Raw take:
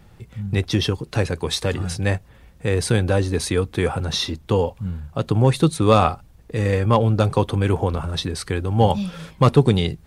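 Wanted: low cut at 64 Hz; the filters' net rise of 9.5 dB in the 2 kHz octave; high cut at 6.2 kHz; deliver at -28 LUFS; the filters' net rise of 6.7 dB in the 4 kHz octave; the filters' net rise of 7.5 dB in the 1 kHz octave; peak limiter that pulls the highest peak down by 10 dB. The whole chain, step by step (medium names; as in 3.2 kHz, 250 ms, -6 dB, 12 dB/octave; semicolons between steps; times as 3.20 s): high-pass 64 Hz; low-pass 6.2 kHz; peaking EQ 1 kHz +7 dB; peaking EQ 2 kHz +8.5 dB; peaking EQ 4 kHz +5.5 dB; trim -7.5 dB; peak limiter -14.5 dBFS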